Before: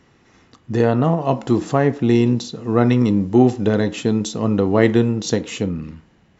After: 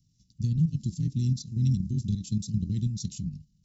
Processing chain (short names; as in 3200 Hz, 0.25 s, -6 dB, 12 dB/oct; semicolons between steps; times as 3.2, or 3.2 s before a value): granular stretch 0.57×, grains 47 ms; level quantiser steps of 9 dB; elliptic band-stop 170–4800 Hz, stop band 80 dB